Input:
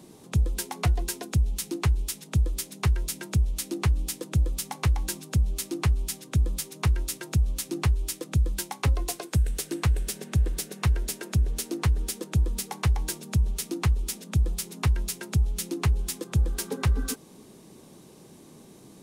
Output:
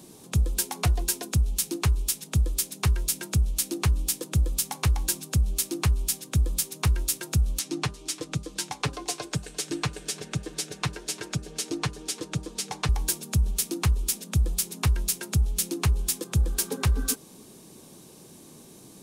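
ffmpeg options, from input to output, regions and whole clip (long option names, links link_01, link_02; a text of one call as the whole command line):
ffmpeg -i in.wav -filter_complex "[0:a]asettb=1/sr,asplit=3[link_01][link_02][link_03];[link_01]atrim=end=7.594[link_04];[link_02]atrim=start=7.59:end=12.89,asetpts=PTS-STARTPTS,afade=type=in:duration=0.004:curve=qsin,afade=type=out:start_time=5.296:duration=0.004:curve=qsin,highpass=160,lowpass=6600,aecho=1:1:6.7:0.48,atrim=end_sample=233730,aecho=1:1:347:0.0944,atrim=end_sample=233730[link_05];[link_03]atrim=start=12.886[link_06];[link_04][link_05]acrossfade=duration=0.004:curve1=hsin:curve2=qsin[link_07];[link_07][link_06]acrossfade=duration=0.004:curve1=qsin:curve2=hsin,highshelf=frequency=4000:gain=7.5,bandreject=frequency=2000:width=20,bandreject=frequency=200.6:width_type=h:width=4,bandreject=frequency=401.2:width_type=h:width=4,bandreject=frequency=601.8:width_type=h:width=4,bandreject=frequency=802.4:width_type=h:width=4,bandreject=frequency=1003:width_type=h:width=4,bandreject=frequency=1203.6:width_type=h:width=4,bandreject=frequency=1404.2:width_type=h:width=4" out.wav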